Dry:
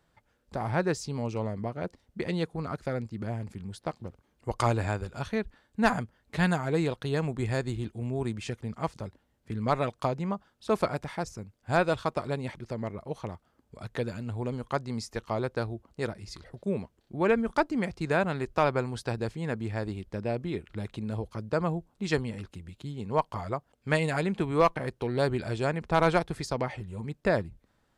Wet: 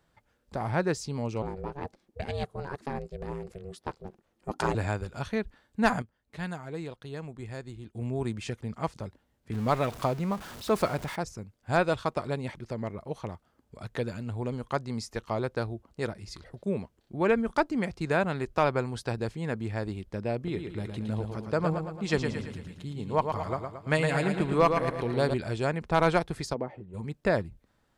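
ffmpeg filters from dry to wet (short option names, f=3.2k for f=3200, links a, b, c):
-filter_complex "[0:a]asettb=1/sr,asplit=3[a][b][c];[a]atrim=end=1.424[d];[b]atrim=start=1.42:end=4.75,asetpts=PTS-STARTPTS,afade=t=in:d=0.004:c=qsin,afade=t=out:st=3.326:d=0.004:c=qsin,aeval=exprs='val(0)*sin(2*PI*280*n/s)':c=same[e];[c]atrim=start=4.746[f];[d][e]acrossfade=d=0.004:c1=hsin:c2=qsin[g];[g][f]acrossfade=d=0.004:c1=qsin:c2=hsin,asettb=1/sr,asplit=3[h][i][j];[h]atrim=end=9.534[k];[i]atrim=start=9.53:end=11.16,asetpts=PTS-STARTPTS,afade=t=in:d=0.004:c=qsin,afade=t=out:st=1.626:d=0.004:c=qsin,aeval=exprs='val(0)+0.5*0.0126*sgn(val(0))':c=same[l];[j]atrim=start=11.156[m];[k][l]acrossfade=d=0.004:c1=hsin:c2=qsin[n];[n][m]acrossfade=d=0.004:c1=qsin:c2=hsin,asettb=1/sr,asplit=3[o][p][q];[o]atrim=end=20.364[r];[p]atrim=start=20.36:end=25.34,asetpts=PTS-STARTPTS,afade=t=in:d=0.004:c=qsin,afade=t=out:st=4.976:d=0.004:c=qsin,aecho=1:1:112|224|336|448|560|672:0.501|0.256|0.13|0.0665|0.0339|0.0173,atrim=end_sample=219618[s];[q]atrim=start=25.336[t];[r][s]acrossfade=d=0.004:c1=hsin:c2=qsin[u];[u][t]acrossfade=d=0.004:c1=qsin:c2=hsin,asplit=3[v][w][x];[v]afade=t=out:st=26.53:d=0.02[y];[w]bandpass=f=350:t=q:w=0.87,afade=t=in:st=26.53:d=0.02,afade=t=out:st=26.93:d=0.02[z];[x]afade=t=in:st=26.93:d=0.02[aa];[y][z][aa]amix=inputs=3:normalize=0,asplit=3[ab][ac][ad];[ab]atrim=end=6.022[ae];[ac]atrim=start=6.018:end=7.952,asetpts=PTS-STARTPTS,volume=-10dB[af];[ad]atrim=start=7.948[ag];[ae][af]acrossfade=d=0.004:c1=hsin:c2=hsin[ah];[ah][ag]acrossfade=d=0.004:c1=hsin:c2=hsin"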